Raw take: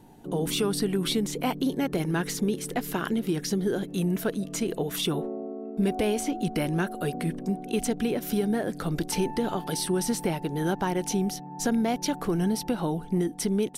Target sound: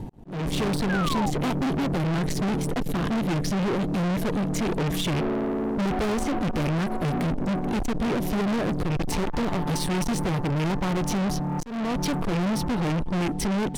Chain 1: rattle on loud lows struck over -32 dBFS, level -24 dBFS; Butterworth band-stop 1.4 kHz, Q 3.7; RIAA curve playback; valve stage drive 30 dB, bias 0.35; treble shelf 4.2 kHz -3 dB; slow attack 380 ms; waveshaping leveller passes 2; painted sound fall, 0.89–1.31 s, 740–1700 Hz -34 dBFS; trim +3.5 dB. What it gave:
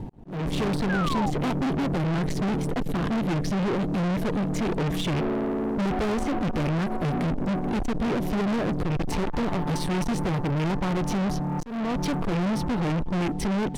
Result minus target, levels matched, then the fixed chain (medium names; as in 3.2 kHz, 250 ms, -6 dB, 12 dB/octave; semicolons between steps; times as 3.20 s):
8 kHz band -5.0 dB
rattle on loud lows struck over -32 dBFS, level -24 dBFS; Butterworth band-stop 1.4 kHz, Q 3.7; RIAA curve playback; valve stage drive 30 dB, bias 0.35; treble shelf 4.2 kHz +5.5 dB; slow attack 380 ms; waveshaping leveller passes 2; painted sound fall, 0.89–1.31 s, 740–1700 Hz -34 dBFS; trim +3.5 dB